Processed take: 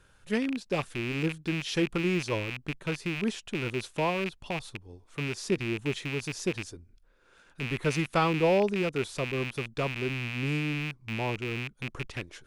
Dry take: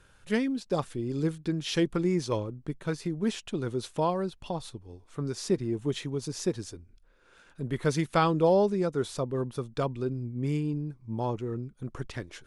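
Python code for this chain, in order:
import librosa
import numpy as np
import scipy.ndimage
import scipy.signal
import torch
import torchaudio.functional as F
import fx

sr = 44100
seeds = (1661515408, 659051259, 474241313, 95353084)

y = fx.rattle_buzz(x, sr, strikes_db=-38.0, level_db=-22.0)
y = y * librosa.db_to_amplitude(-1.5)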